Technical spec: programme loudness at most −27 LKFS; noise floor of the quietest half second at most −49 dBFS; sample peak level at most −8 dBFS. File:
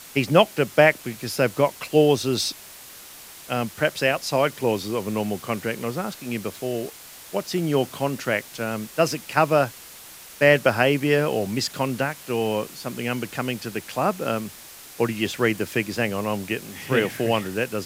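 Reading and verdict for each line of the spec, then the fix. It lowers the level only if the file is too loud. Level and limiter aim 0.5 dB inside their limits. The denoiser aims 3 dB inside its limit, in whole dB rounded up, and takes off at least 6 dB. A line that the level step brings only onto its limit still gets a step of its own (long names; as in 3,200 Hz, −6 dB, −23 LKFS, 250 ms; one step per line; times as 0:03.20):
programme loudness −23.5 LKFS: out of spec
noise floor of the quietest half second −43 dBFS: out of spec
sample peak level −2.0 dBFS: out of spec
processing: broadband denoise 6 dB, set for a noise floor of −43 dBFS
level −4 dB
brickwall limiter −8.5 dBFS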